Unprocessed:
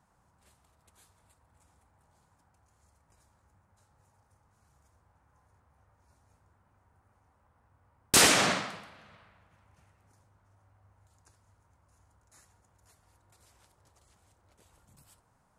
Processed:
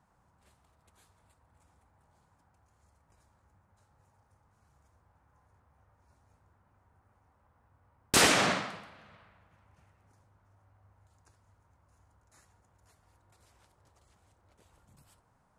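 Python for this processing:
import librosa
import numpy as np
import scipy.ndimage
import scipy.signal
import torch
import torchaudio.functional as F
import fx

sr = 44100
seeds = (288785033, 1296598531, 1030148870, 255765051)

y = fx.high_shelf(x, sr, hz=4800.0, db=-6.5)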